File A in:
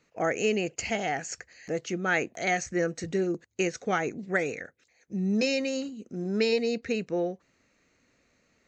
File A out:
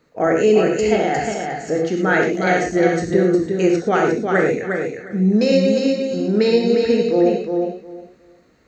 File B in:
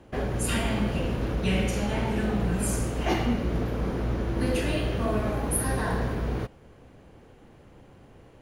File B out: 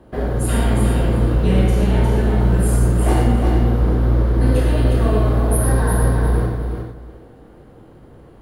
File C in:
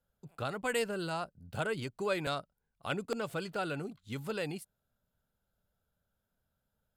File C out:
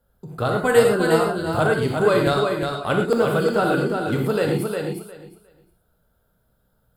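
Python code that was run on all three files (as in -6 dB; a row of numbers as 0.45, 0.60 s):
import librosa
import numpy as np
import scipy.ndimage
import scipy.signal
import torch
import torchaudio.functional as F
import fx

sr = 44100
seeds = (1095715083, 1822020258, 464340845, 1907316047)

p1 = fx.graphic_eq_15(x, sr, hz=(400, 2500, 6300), db=(3, -9, -10))
p2 = p1 + fx.echo_feedback(p1, sr, ms=357, feedback_pct=18, wet_db=-5.0, dry=0)
p3 = fx.rev_gated(p2, sr, seeds[0], gate_ms=140, shape='flat', drr_db=1.0)
y = librosa.util.normalize(p3) * 10.0 ** (-3 / 20.0)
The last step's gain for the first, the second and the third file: +8.0, +3.5, +12.5 dB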